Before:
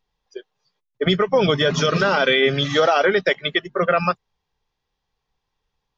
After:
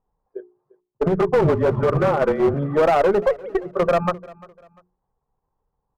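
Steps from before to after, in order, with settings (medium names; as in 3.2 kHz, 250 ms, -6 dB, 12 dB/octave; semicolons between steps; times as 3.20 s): 3.22–3.63 s: formants replaced by sine waves; low-pass 1.1 kHz 24 dB/octave; in parallel at -2.5 dB: level held to a coarse grid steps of 20 dB; 1.20–2.54 s: on the sum: frequency shift -32 Hz; one-sided clip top -15.5 dBFS, bottom -9.5 dBFS; hum notches 60/120/180/240/300/360/420 Hz; feedback delay 347 ms, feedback 33%, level -22 dB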